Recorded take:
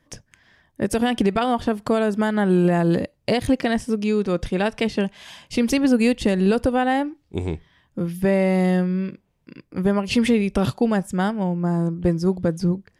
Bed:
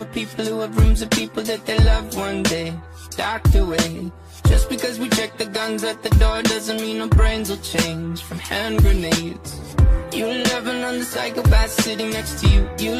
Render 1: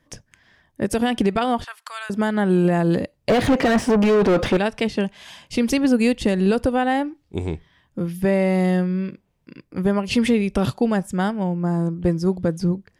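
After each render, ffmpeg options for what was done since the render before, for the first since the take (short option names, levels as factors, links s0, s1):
-filter_complex "[0:a]asettb=1/sr,asplit=3[s0][s1][s2];[s0]atrim=end=1.644[s3];[s1]atrim=start=1.64:end=2.1,asetpts=PTS-STARTPTS,afade=t=in:d=0.004:c=qsin,afade=t=out:st=0.456:d=0.004:c=qsin,highpass=f=1200:w=0.5412,highpass=f=1200:w=1.3066[s4];[s2]atrim=start=2.096[s5];[s3][s4]acrossfade=d=0.004:c1=hsin:c2=qsin[s6];[s6][s5]acrossfade=d=0.004:c1=qsin:c2=hsin,asettb=1/sr,asplit=3[s7][s8][s9];[s7]atrim=end=3.294[s10];[s8]atrim=start=3.29:end=4.57,asetpts=PTS-STARTPTS,afade=t=in:d=0.004:c=qsin,afade=t=out:st=1.276:d=0.004:c=qsin,asplit=2[s11][s12];[s12]highpass=f=720:p=1,volume=50.1,asoftclip=type=tanh:threshold=0.376[s13];[s11][s13]amix=inputs=2:normalize=0,lowpass=f=1000:p=1,volume=0.501[s14];[s9]atrim=start=4.566[s15];[s10][s14]acrossfade=d=0.004:c1=hsin:c2=qsin[s16];[s16][s15]acrossfade=d=0.004:c1=qsin:c2=hsin"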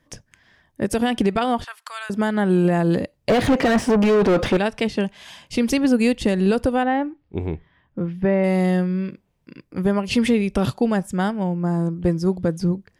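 -filter_complex "[0:a]asettb=1/sr,asplit=3[s0][s1][s2];[s0]atrim=end=6.834[s3];[s1]atrim=start=6.83:end=8.44,asetpts=PTS-STARTPTS,afade=t=in:d=0.004:c=qsin,afade=t=out:st=1.606:d=0.004:c=qsin,lowpass=2300[s4];[s2]atrim=start=8.436[s5];[s3][s4]acrossfade=d=0.004:c1=hsin:c2=qsin[s6];[s6][s5]acrossfade=d=0.004:c1=qsin:c2=hsin"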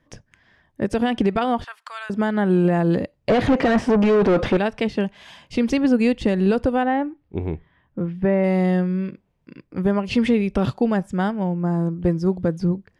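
-filter_complex "[0:a]acrossover=split=9100[s0][s1];[s1]acompressor=threshold=0.00251:ratio=4:attack=1:release=60[s2];[s0][s2]amix=inputs=2:normalize=0,highshelf=f=5300:g=-12"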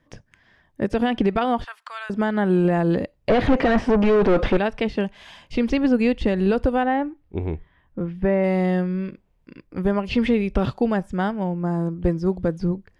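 -filter_complex "[0:a]acrossover=split=4900[s0][s1];[s1]acompressor=threshold=0.00178:ratio=4:attack=1:release=60[s2];[s0][s2]amix=inputs=2:normalize=0,asubboost=boost=4:cutoff=57"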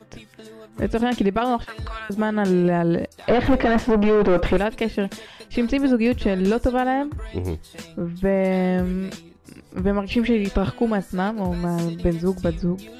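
-filter_complex "[1:a]volume=0.112[s0];[0:a][s0]amix=inputs=2:normalize=0"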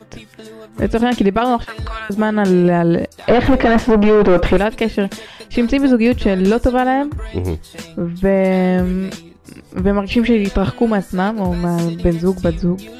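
-af "volume=2,alimiter=limit=0.708:level=0:latency=1"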